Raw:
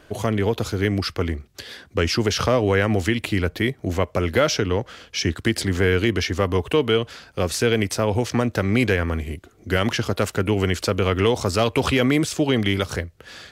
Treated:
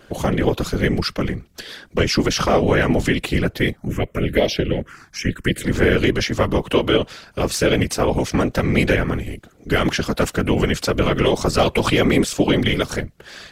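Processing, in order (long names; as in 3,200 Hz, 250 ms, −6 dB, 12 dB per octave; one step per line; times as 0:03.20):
random phases in short frames
0:03.77–0:05.64: phaser swept by the level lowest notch 430 Hz, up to 1,400 Hz, full sweep at −14.5 dBFS
level +2.5 dB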